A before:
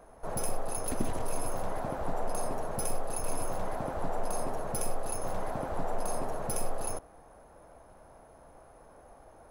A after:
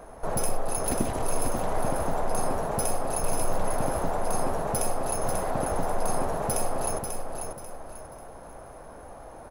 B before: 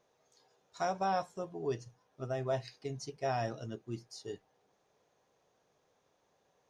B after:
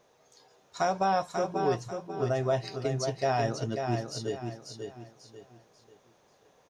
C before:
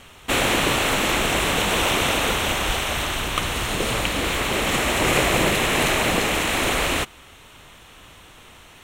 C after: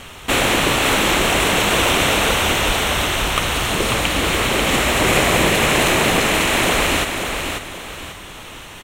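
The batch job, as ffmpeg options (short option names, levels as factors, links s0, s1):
-filter_complex "[0:a]asplit=2[s0][s1];[s1]acompressor=threshold=0.0158:ratio=6,volume=1.26[s2];[s0][s2]amix=inputs=2:normalize=0,aecho=1:1:541|1082|1623|2164:0.501|0.165|0.0546|0.018,volume=1.26"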